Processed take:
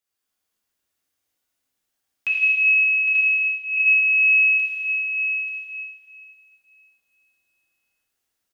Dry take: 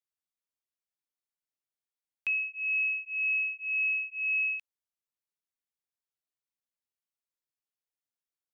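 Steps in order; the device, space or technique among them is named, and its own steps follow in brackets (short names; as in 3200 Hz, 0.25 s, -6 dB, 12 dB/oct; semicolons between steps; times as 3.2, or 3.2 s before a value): stairwell (reverb RT60 2.8 s, pre-delay 54 ms, DRR -3.5 dB); 2.32–3.77 elliptic high-pass 2100 Hz, stop band 40 dB; tapped delay 0.107/0.16/0.808/0.887 s -11/-10.5/-12/-9.5 dB; two-slope reverb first 0.53 s, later 2 s, from -18 dB, DRR -1 dB; gain +6 dB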